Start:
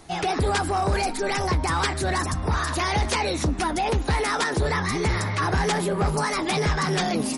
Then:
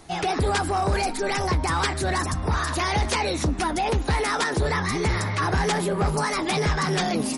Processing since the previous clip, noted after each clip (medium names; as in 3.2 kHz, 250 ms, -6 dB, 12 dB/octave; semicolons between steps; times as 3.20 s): no audible change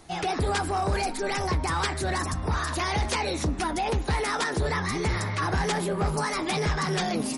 de-hum 138.7 Hz, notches 19; trim -3 dB